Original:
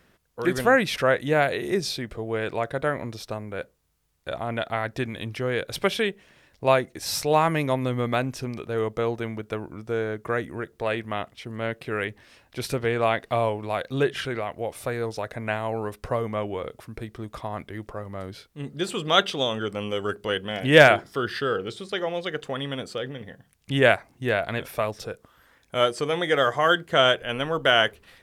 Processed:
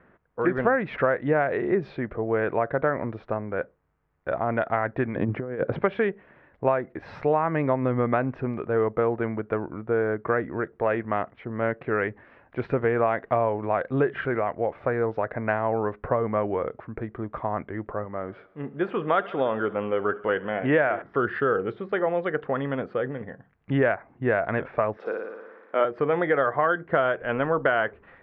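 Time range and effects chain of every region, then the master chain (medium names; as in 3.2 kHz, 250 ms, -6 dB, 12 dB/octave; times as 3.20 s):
5.15–5.81 s: high-pass 160 Hz + tilt EQ -3.5 dB/octave + compressor with a negative ratio -28 dBFS, ratio -0.5
18.05–21.02 s: bass shelf 170 Hz -7.5 dB + band-stop 4.1 kHz, Q 9.4 + thinning echo 70 ms, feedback 68%, high-pass 200 Hz, level -20 dB
24.97–25.85 s: high-pass 260 Hz 24 dB/octave + treble shelf 8.7 kHz +8.5 dB + flutter echo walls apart 9.8 m, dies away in 1.2 s
whole clip: low-pass 1.8 kHz 24 dB/octave; bass shelf 110 Hz -8.5 dB; compression 10:1, threshold -23 dBFS; trim +5 dB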